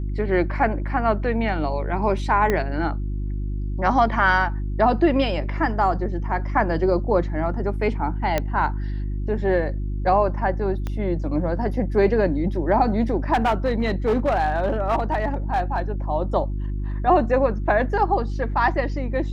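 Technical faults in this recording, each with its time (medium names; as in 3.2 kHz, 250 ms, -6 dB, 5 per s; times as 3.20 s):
hum 50 Hz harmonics 7 -26 dBFS
2.50 s: pop -9 dBFS
8.38 s: pop -8 dBFS
10.87 s: pop -16 dBFS
13.33–15.80 s: clipped -15.5 dBFS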